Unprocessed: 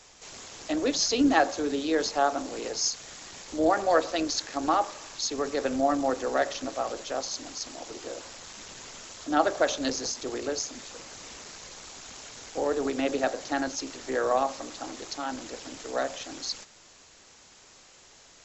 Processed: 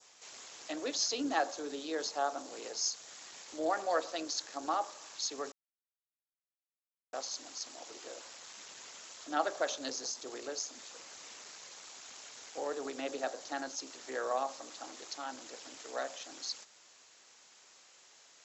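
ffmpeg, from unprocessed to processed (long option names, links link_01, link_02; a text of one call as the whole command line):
ffmpeg -i in.wav -filter_complex "[0:a]asplit=3[link_01][link_02][link_03];[link_01]atrim=end=5.52,asetpts=PTS-STARTPTS,afade=type=out:start_time=5.516:duration=0.004:curve=hsin[link_04];[link_02]atrim=start=5.52:end=7.13,asetpts=PTS-STARTPTS,volume=0[link_05];[link_03]atrim=start=7.13,asetpts=PTS-STARTPTS,afade=type=in:duration=0.004:curve=hsin[link_06];[link_04][link_05][link_06]concat=n=3:v=0:a=1,highpass=frequency=660:poles=1,adynamicequalizer=threshold=0.00447:dfrequency=2200:dqfactor=1.1:tfrequency=2200:tqfactor=1.1:attack=5:release=100:ratio=0.375:range=3:mode=cutabove:tftype=bell,volume=-5.5dB" out.wav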